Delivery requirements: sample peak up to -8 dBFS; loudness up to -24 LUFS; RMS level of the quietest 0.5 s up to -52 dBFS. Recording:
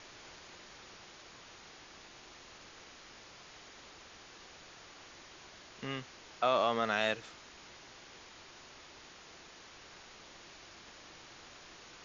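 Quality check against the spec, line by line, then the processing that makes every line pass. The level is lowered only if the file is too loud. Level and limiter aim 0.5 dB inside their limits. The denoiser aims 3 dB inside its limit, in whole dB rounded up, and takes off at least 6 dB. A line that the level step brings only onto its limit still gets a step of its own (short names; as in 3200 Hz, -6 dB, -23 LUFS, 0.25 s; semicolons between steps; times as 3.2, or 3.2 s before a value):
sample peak -17.0 dBFS: OK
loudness -34.5 LUFS: OK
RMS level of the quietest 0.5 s -55 dBFS: OK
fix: none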